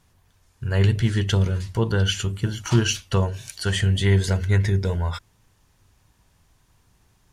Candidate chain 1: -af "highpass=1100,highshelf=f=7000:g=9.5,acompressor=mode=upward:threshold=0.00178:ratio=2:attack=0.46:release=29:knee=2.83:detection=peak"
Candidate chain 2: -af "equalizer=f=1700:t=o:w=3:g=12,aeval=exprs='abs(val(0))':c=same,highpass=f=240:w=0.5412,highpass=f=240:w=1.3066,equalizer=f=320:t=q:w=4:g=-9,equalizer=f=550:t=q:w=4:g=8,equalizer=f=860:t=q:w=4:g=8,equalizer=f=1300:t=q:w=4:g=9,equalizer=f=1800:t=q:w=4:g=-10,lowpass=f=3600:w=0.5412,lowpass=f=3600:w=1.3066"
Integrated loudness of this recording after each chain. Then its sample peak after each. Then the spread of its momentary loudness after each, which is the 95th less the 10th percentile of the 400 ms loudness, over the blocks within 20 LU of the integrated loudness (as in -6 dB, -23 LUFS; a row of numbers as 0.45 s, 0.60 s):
-29.0 LUFS, -24.0 LUFS; -8.5 dBFS, -3.5 dBFS; 14 LU, 6 LU